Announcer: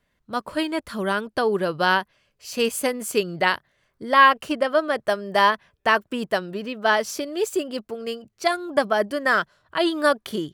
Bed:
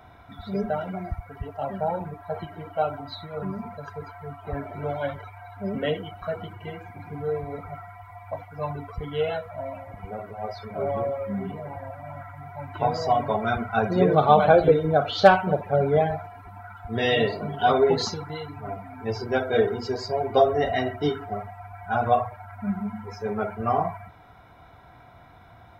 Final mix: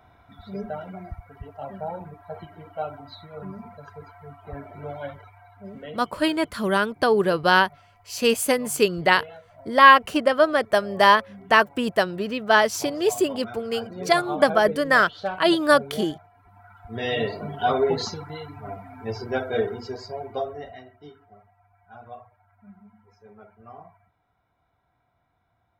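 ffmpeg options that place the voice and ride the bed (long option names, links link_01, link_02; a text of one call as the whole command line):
ffmpeg -i stem1.wav -i stem2.wav -filter_complex "[0:a]adelay=5650,volume=2.5dB[link_01];[1:a]volume=7dB,afade=type=out:start_time=5.06:duration=0.94:silence=0.354813,afade=type=in:start_time=16.33:duration=1.06:silence=0.237137,afade=type=out:start_time=19.38:duration=1.47:silence=0.112202[link_02];[link_01][link_02]amix=inputs=2:normalize=0" out.wav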